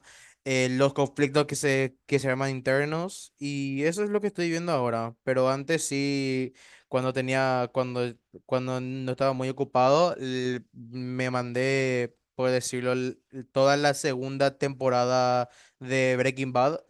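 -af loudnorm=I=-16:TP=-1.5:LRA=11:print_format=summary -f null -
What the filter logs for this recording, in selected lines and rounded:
Input Integrated:    -26.7 LUFS
Input True Peak:      -8.9 dBTP
Input LRA:             1.8 LU
Input Threshold:     -36.9 LUFS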